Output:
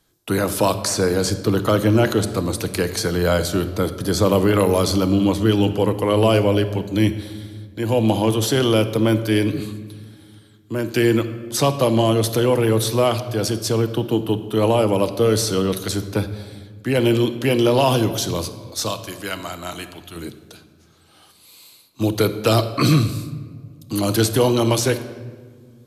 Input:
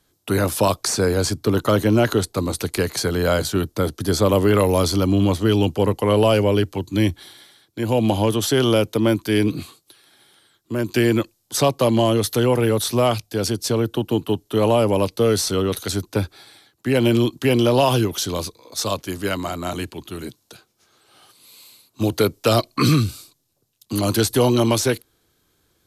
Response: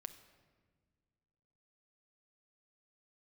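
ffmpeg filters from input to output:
-filter_complex "[0:a]asettb=1/sr,asplit=3[link_01][link_02][link_03];[link_01]atrim=end=18.914[link_04];[link_02]atrim=start=18.91:end=20.16,asetpts=PTS-STARTPTS,afade=type=in:duration=0.004:curve=qsin,afade=type=out:start_time=1.246:duration=0.004:curve=qsin,equalizer=frequency=200:width=0.3:gain=-8.5[link_05];[link_03]atrim=start=20.156[link_06];[link_04][link_05]acrossfade=duration=0.004:curve1=hsin:curve2=qsin[link_07];[link_07][link_06]acrossfade=duration=0.004:curve1=qsin:curve2=hsin[link_08];[1:a]atrim=start_sample=2205[link_09];[link_08][link_09]afir=irnorm=-1:irlink=0,volume=5dB"

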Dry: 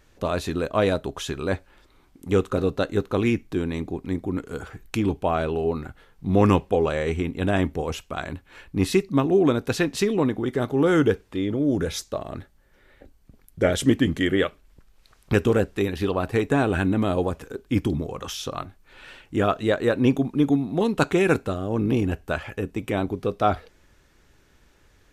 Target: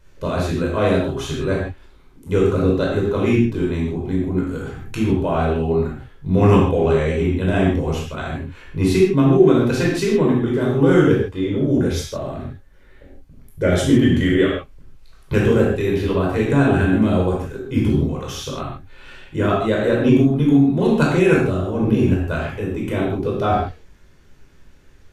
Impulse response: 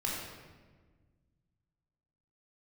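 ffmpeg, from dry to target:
-filter_complex "[0:a]lowshelf=frequency=180:gain=4[link_01];[1:a]atrim=start_sample=2205,afade=type=out:start_time=0.25:duration=0.01,atrim=end_sample=11466,asetrate=52920,aresample=44100[link_02];[link_01][link_02]afir=irnorm=-1:irlink=0"

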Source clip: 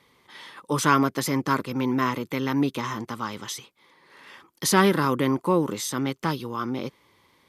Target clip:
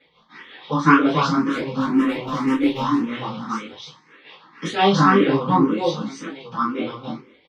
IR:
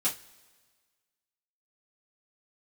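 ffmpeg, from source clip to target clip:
-filter_complex "[0:a]lowpass=frequency=4400:width=0.5412,lowpass=frequency=4400:width=1.3066,asettb=1/sr,asplit=3[link_01][link_02][link_03];[link_01]atrim=end=5.894[link_04];[link_02]atrim=start=5.89:end=6.57,asetpts=PTS-STARTPTS,afade=type=in:duration=0.004:curve=qsin,afade=type=out:start_time=0.676:duration=0.004:curve=qsin,acompressor=threshold=-34dB:ratio=10[link_05];[link_03]atrim=start=6.566[link_06];[link_04][link_05]acrossfade=duration=0.004:curve1=hsin:curve2=qsin[link_07];[link_07][link_06]acrossfade=duration=0.004:curve1=qsin:curve2=hsin,tremolo=f=5.6:d=0.74,asettb=1/sr,asplit=3[link_08][link_09][link_10];[link_08]atrim=end=1.234[link_11];[link_09]atrim=start=1.23:end=2.74,asetpts=PTS-STARTPTS,afade=type=in:duration=0.004:curve=qsin,afade=type=out:start_time=1.506:duration=0.004:curve=qsin,volume=21dB,asoftclip=hard,volume=-21dB[link_12];[link_10]atrim=start=2.736[link_13];[link_11][link_12]acrossfade=duration=0.004:curve1=hsin:curve2=qsin[link_14];[link_14][link_13]acrossfade=duration=0.004:curve1=qsin:curve2=hsin,flanger=delay=18.5:depth=6.8:speed=0.51,aecho=1:1:284:0.708[link_15];[1:a]atrim=start_sample=2205,afade=type=out:start_time=0.35:duration=0.01,atrim=end_sample=15876[link_16];[link_15][link_16]afir=irnorm=-1:irlink=0,asplit=2[link_17][link_18];[link_18]afreqshift=1.9[link_19];[link_17][link_19]amix=inputs=2:normalize=1,volume=6dB"

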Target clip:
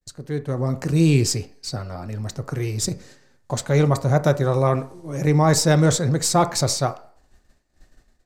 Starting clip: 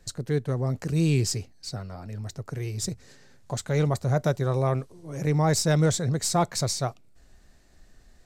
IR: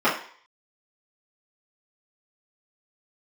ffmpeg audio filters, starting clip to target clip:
-filter_complex "[0:a]agate=range=-33dB:threshold=-45dB:ratio=3:detection=peak,dynaudnorm=framelen=210:gausssize=5:maxgain=10.5dB,asplit=2[link_01][link_02];[1:a]atrim=start_sample=2205,asetrate=39690,aresample=44100[link_03];[link_02][link_03]afir=irnorm=-1:irlink=0,volume=-27.5dB[link_04];[link_01][link_04]amix=inputs=2:normalize=0,volume=-4dB"

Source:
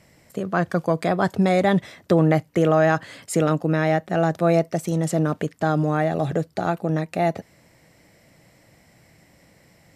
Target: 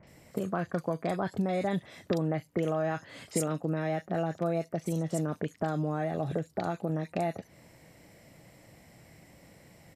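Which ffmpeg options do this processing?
ffmpeg -i in.wav -filter_complex "[0:a]acompressor=threshold=-30dB:ratio=3,acrossover=split=1600|5100[link_01][link_02][link_03];[link_02]adelay=30[link_04];[link_03]adelay=70[link_05];[link_01][link_04][link_05]amix=inputs=3:normalize=0" out.wav

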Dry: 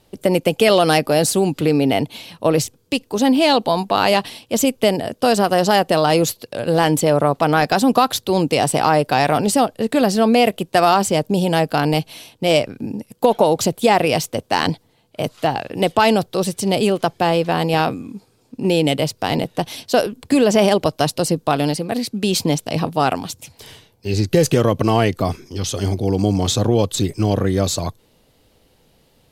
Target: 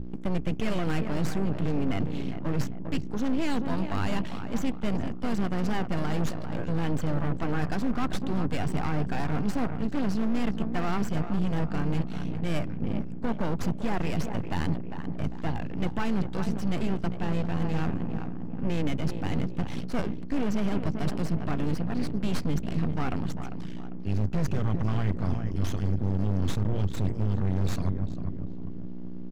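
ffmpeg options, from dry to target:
ffmpeg -i in.wav -filter_complex "[0:a]highpass=77,equalizer=frequency=560:width_type=o:width=2.9:gain=-12.5,aeval=exprs='val(0)+0.0158*(sin(2*PI*60*n/s)+sin(2*PI*2*60*n/s)/2+sin(2*PI*3*60*n/s)/3+sin(2*PI*4*60*n/s)/4+sin(2*PI*5*60*n/s)/5)':channel_layout=same,lowpass=frequency=6900:width=0.5412,lowpass=frequency=6900:width=1.3066,asplit=2[link_01][link_02];[link_02]adelay=399,lowpass=frequency=1600:poles=1,volume=-11dB,asplit=2[link_03][link_04];[link_04]adelay=399,lowpass=frequency=1600:poles=1,volume=0.43,asplit=2[link_05][link_06];[link_06]adelay=399,lowpass=frequency=1600:poles=1,volume=0.43,asplit=2[link_07][link_08];[link_08]adelay=399,lowpass=frequency=1600:poles=1,volume=0.43[link_09];[link_01][link_03][link_05][link_07][link_09]amix=inputs=5:normalize=0,aeval=exprs='max(val(0),0)':channel_layout=same,firequalizer=gain_entry='entry(160,0);entry(520,-7);entry(1600,-7);entry(3900,-20)':delay=0.05:min_phase=1,asoftclip=type=hard:threshold=-21.5dB,bandreject=frequency=60:width_type=h:width=6,bandreject=frequency=120:width_type=h:width=6,areverse,acompressor=threshold=-29dB:ratio=6,areverse,volume=8.5dB" out.wav

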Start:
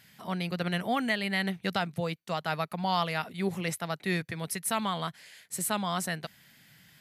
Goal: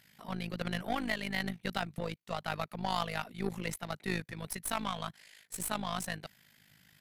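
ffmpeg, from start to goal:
ffmpeg -i in.wav -af "aeval=exprs='0.188*(cos(1*acos(clip(val(0)/0.188,-1,1)))-cos(1*PI/2))+0.0133*(cos(8*acos(clip(val(0)/0.188,-1,1)))-cos(8*PI/2))':channel_layout=same,tremolo=f=52:d=0.788,volume=-2dB" out.wav

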